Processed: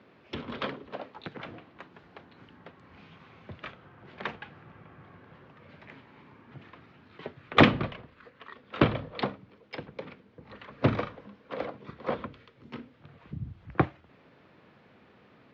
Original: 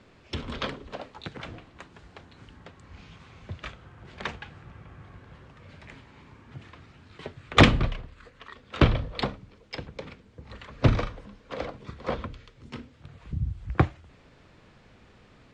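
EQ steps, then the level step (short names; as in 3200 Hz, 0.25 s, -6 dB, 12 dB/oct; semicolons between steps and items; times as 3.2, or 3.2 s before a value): Gaussian blur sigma 1.6 samples; HPF 160 Hz 12 dB/oct; air absorption 96 m; 0.0 dB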